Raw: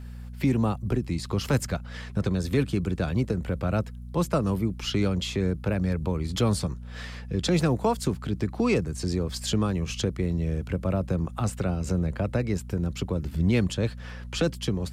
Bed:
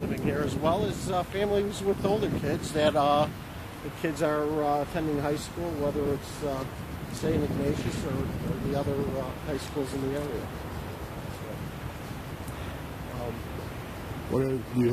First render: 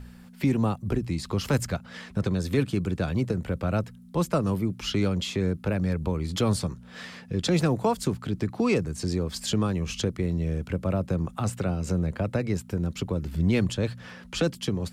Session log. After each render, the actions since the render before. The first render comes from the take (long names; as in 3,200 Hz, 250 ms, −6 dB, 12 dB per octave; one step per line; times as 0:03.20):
hum removal 60 Hz, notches 2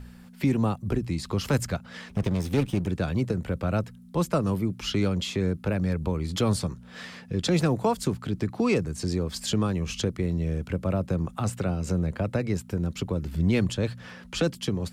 0:02.09–0:02.88: lower of the sound and its delayed copy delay 0.33 ms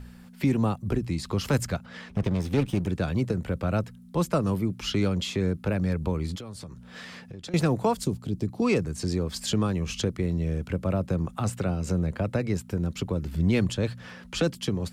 0:01.85–0:02.65: high-shelf EQ 5,100 Hz → 8,400 Hz −8 dB
0:06.35–0:07.54: downward compressor, threshold −37 dBFS
0:08.04–0:08.62: parametric band 1,600 Hz −14.5 dB 1.7 octaves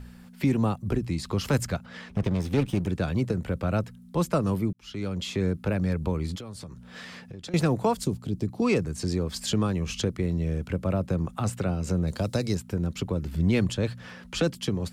0:04.73–0:05.41: fade in
0:12.07–0:12.55: high shelf with overshoot 3,200 Hz +11.5 dB, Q 1.5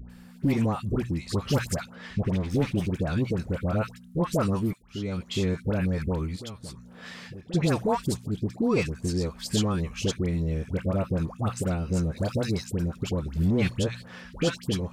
hard clipping −16.5 dBFS, distortion −25 dB
all-pass dispersion highs, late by 98 ms, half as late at 990 Hz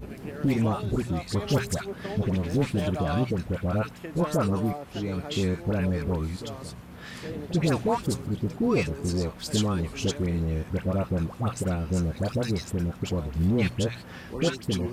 mix in bed −9.5 dB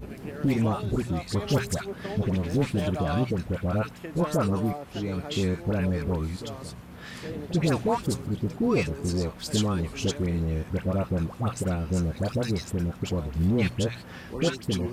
no processing that can be heard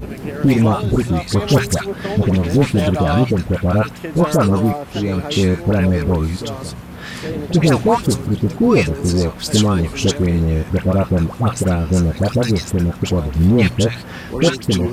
level +11 dB
brickwall limiter −2 dBFS, peak gain reduction 1.5 dB